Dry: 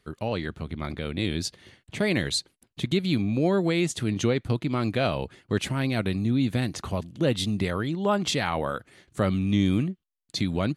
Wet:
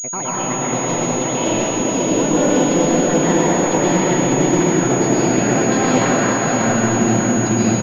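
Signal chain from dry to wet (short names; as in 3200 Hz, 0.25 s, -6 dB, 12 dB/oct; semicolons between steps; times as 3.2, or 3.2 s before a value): speed glide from 164% -> 111%; low shelf 92 Hz -11.5 dB; sample leveller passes 2; compressor, threshold -20 dBFS, peak gain reduction 5 dB; feedback echo 0.594 s, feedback 57%, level -5 dB; reverb RT60 4.6 s, pre-delay 0.11 s, DRR -9.5 dB; pulse-width modulation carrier 6700 Hz; gain -3 dB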